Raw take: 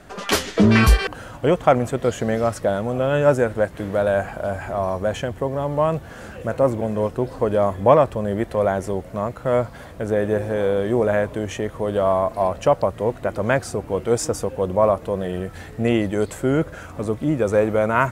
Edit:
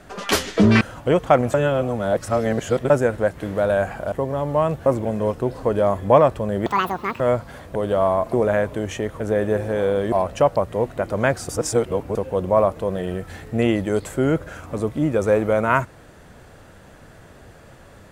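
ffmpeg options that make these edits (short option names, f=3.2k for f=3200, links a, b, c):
-filter_complex "[0:a]asplit=14[a][b][c][d][e][f][g][h][i][j][k][l][m][n];[a]atrim=end=0.812[o];[b]atrim=start=1.178:end=1.912[p];[c]atrim=start=1.908:end=3.272,asetpts=PTS-STARTPTS,areverse[q];[d]atrim=start=3.268:end=4.492[r];[e]atrim=start=5.348:end=6.092[s];[f]atrim=start=6.618:end=8.424[t];[g]atrim=start=8.42:end=9.46,asetpts=PTS-STARTPTS,asetrate=84672,aresample=44100[u];[h]atrim=start=9.456:end=10.012[v];[i]atrim=start=11.798:end=12.382[w];[j]atrim=start=10.928:end=11.802[x];[k]atrim=start=10.008:end=10.932[y];[l]atrim=start=12.378:end=13.752[z];[m]atrim=start=13.748:end=14.412,asetpts=PTS-STARTPTS,areverse[aa];[n]atrim=start=14.408[ab];[o][p]acrossfade=d=0.004:c1=hsin:c2=hsin[ac];[ac][q]acrossfade=d=0.004:c1=hsin:c2=hsin[ad];[ad][r]acrossfade=d=0.004:c1=hsin:c2=hsin[ae];[ae][s]acrossfade=d=0.004:c1=hsin:c2=hsin[af];[af][t]acrossfade=d=0.004:c1=hsin:c2=hsin[ag];[ag][u]acrossfade=d=0.004:c1=hsin:c2=hsin[ah];[ah][v]acrossfade=d=0.004:c1=hsin:c2=hsin[ai];[ai][w]acrossfade=d=0.004:c1=hsin:c2=hsin[aj];[aj][x]acrossfade=d=0.004:c1=hsin:c2=hsin[ak];[ak][y]acrossfade=d=0.004:c1=hsin:c2=hsin[al];[al][z]acrossfade=d=0.004:c1=hsin:c2=hsin[am];[am][aa]acrossfade=d=0.004:c1=hsin:c2=hsin[an];[an][ab]acrossfade=d=0.004:c1=hsin:c2=hsin"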